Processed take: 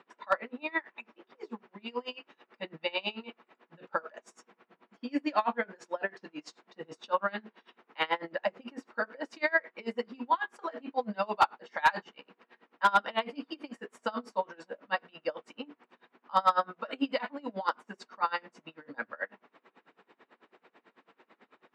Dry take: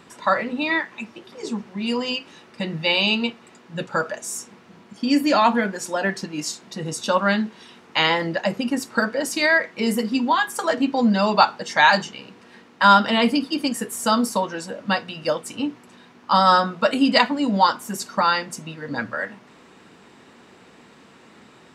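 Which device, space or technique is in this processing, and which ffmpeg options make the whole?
helicopter radio: -af "highpass=370,lowpass=2500,aeval=exprs='val(0)*pow(10,-27*(0.5-0.5*cos(2*PI*9.1*n/s))/20)':channel_layout=same,asoftclip=type=hard:threshold=-10dB,volume=-4dB"

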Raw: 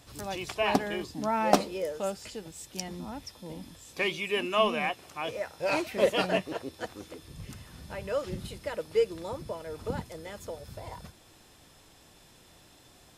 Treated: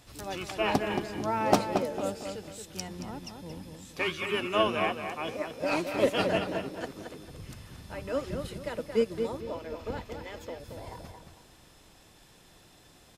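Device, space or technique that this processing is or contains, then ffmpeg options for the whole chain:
octave pedal: -filter_complex "[0:a]asplit=2[link_01][link_02];[link_02]asetrate=22050,aresample=44100,atempo=2,volume=-8dB[link_03];[link_01][link_03]amix=inputs=2:normalize=0,asettb=1/sr,asplit=3[link_04][link_05][link_06];[link_04]atrim=end=9.404[link_07];[link_05]atrim=start=9.4:end=10.6,asetpts=PTS-STARTPTS,afade=type=in:duration=0.004:curve=qsin,afade=type=out:start_time=1.196:duration=0.004:curve=qsin,equalizer=frequency=160:width_type=o:width=0.67:gain=-10,equalizer=frequency=2500:width_type=o:width=0.67:gain=5,equalizer=frequency=10000:width_type=o:width=0.67:gain=-10[link_08];[link_06]atrim=start=10.596[link_09];[link_07][link_08]acrossfade=duration=0.004:curve1=hsin:curve2=qsin[link_10];[link_10][link_09]acrossfade=duration=0.004:curve1=qsin:curve2=hsin,asplit=2[link_11][link_12];[link_12]adelay=225,lowpass=frequency=3100:poles=1,volume=-6dB,asplit=2[link_13][link_14];[link_14]adelay=225,lowpass=frequency=3100:poles=1,volume=0.32,asplit=2[link_15][link_16];[link_16]adelay=225,lowpass=frequency=3100:poles=1,volume=0.32,asplit=2[link_17][link_18];[link_18]adelay=225,lowpass=frequency=3100:poles=1,volume=0.32[link_19];[link_11][link_13][link_15][link_17][link_19]amix=inputs=5:normalize=0,volume=-1.5dB"

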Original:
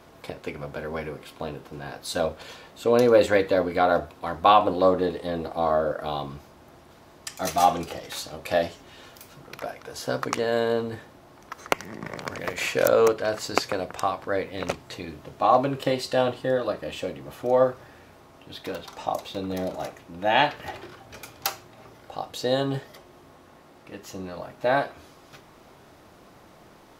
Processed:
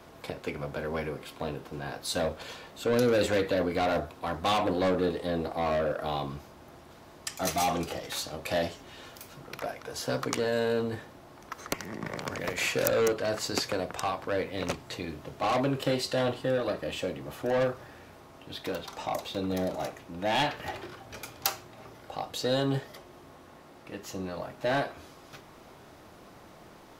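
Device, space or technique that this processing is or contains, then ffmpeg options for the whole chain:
one-band saturation: -filter_complex "[0:a]acrossover=split=280|3400[link_01][link_02][link_03];[link_02]asoftclip=type=tanh:threshold=-25dB[link_04];[link_01][link_04][link_03]amix=inputs=3:normalize=0"

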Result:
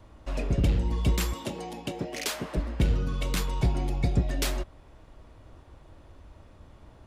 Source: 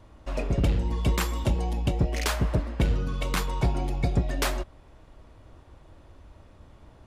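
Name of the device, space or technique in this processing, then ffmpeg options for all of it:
one-band saturation: -filter_complex "[0:a]asettb=1/sr,asplit=3[link_01][link_02][link_03];[link_01]atrim=end=1.334[link_04];[link_02]atrim=start=1.33:end=2.57,asetpts=PTS-STARTPTS,afade=type=in:duration=0.004:curve=qsin,afade=type=out:start_time=1.236:duration=0.004:curve=qsin,highpass=260[link_05];[link_03]atrim=start=2.566[link_06];[link_04][link_05]acrossfade=duration=0.004:curve1=hsin:curve2=qsin[link_07];[link_07][link_06]acrossfade=duration=0.004:curve1=qsin:curve2=hsin,acrossover=split=440|2200[link_08][link_09][link_10];[link_09]asoftclip=type=tanh:threshold=-38dB[link_11];[link_08][link_11][link_10]amix=inputs=3:normalize=0"

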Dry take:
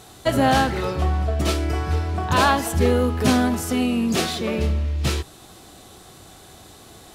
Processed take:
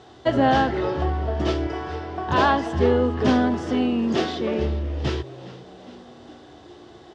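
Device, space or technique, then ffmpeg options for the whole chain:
frequency-shifting delay pedal into a guitar cabinet: -filter_complex "[0:a]asplit=6[link_01][link_02][link_03][link_04][link_05][link_06];[link_02]adelay=410,afreqshift=56,volume=-18dB[link_07];[link_03]adelay=820,afreqshift=112,volume=-22.4dB[link_08];[link_04]adelay=1230,afreqshift=168,volume=-26.9dB[link_09];[link_05]adelay=1640,afreqshift=224,volume=-31.3dB[link_10];[link_06]adelay=2050,afreqshift=280,volume=-35.7dB[link_11];[link_01][link_07][link_08][link_09][link_10][link_11]amix=inputs=6:normalize=0,highpass=76,equalizer=frequency=100:width_type=q:width=4:gain=-5,equalizer=frequency=180:width_type=q:width=4:gain=-7,equalizer=frequency=360:width_type=q:width=4:gain=4,equalizer=frequency=1300:width_type=q:width=4:gain=-4,equalizer=frequency=2400:width_type=q:width=4:gain=-8,equalizer=frequency=4100:width_type=q:width=4:gain=-8,lowpass=frequency=4600:width=0.5412,lowpass=frequency=4600:width=1.3066,asettb=1/sr,asplit=3[link_12][link_13][link_14];[link_12]atrim=end=1.674[link_15];[link_13]atrim=start=1.67:end=2.28,asetpts=PTS-STARTPTS,afade=type=in:duration=0.004:curve=qsin,afade=type=out:start_time=0.606:duration=0.004:curve=qsin,lowshelf=frequency=220:gain=-11[link_16];[link_14]atrim=start=2.276[link_17];[link_15][link_16]acrossfade=duration=0.004:curve1=hsin:curve2=qsin[link_18];[link_18][link_17]acrossfade=duration=0.004:curve1=qsin:curve2=hsin"

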